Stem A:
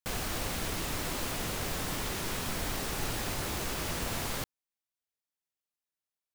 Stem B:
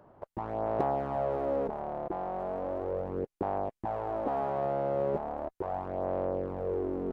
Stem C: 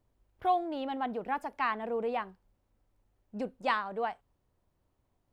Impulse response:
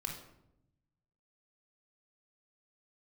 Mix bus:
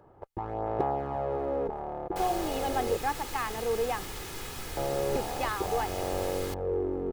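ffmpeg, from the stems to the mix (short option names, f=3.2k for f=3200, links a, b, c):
-filter_complex "[0:a]adelay=2100,volume=-5.5dB[a];[1:a]bass=f=250:g=3,treble=f=4k:g=0,volume=-0.5dB,asplit=3[b][c][d];[b]atrim=end=2.97,asetpts=PTS-STARTPTS,afade=t=out:st=2.966:d=0.004:c=hsin[e];[c]atrim=start=2.97:end=4.77,asetpts=PTS-STARTPTS,volume=0[f];[d]atrim=start=4.77,asetpts=PTS-STARTPTS,afade=t=in:d=0.004:c=hsin[g];[e][f][g]concat=n=3:v=0:a=1[h];[2:a]alimiter=limit=-23.5dB:level=0:latency=1,adelay=1750,volume=1dB[i];[a][h][i]amix=inputs=3:normalize=0,aecho=1:1:2.4:0.44"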